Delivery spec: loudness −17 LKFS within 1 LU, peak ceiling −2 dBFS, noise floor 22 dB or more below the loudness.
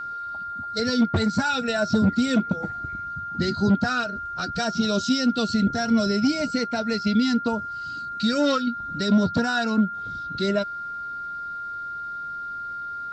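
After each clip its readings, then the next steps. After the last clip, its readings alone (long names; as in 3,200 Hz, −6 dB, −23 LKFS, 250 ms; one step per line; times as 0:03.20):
interfering tone 1,400 Hz; level of the tone −30 dBFS; integrated loudness −24.5 LKFS; sample peak −10.0 dBFS; target loudness −17.0 LKFS
→ notch filter 1,400 Hz, Q 30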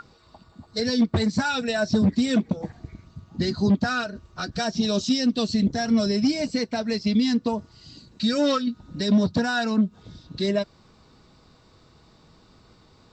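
interfering tone none found; integrated loudness −24.0 LKFS; sample peak −10.5 dBFS; target loudness −17.0 LKFS
→ level +7 dB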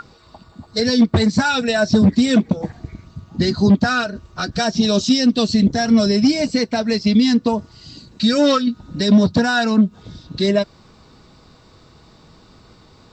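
integrated loudness −17.0 LKFS; sample peak −3.5 dBFS; background noise floor −49 dBFS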